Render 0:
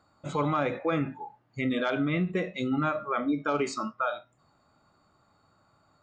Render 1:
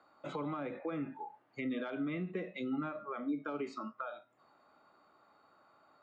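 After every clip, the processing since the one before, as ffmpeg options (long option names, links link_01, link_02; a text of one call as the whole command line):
ffmpeg -i in.wav -filter_complex "[0:a]acrossover=split=260[link_01][link_02];[link_02]acompressor=threshold=-42dB:ratio=6[link_03];[link_01][link_03]amix=inputs=2:normalize=0,acrossover=split=260 4100:gain=0.0891 1 0.126[link_04][link_05][link_06];[link_04][link_05][link_06]amix=inputs=3:normalize=0,volume=1.5dB" out.wav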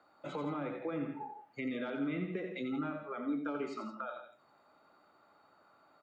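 ffmpeg -i in.wav -af "bandreject=frequency=1100:width=18,aecho=1:1:87|166:0.447|0.266" out.wav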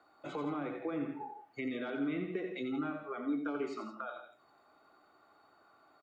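ffmpeg -i in.wav -af "aecho=1:1:2.7:0.37" out.wav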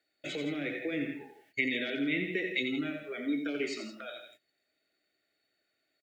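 ffmpeg -i in.wav -af "agate=range=-17dB:threshold=-60dB:ratio=16:detection=peak,firequalizer=gain_entry='entry(610,0);entry(980,-25);entry(1800,12)':delay=0.05:min_phase=1,volume=2.5dB" out.wav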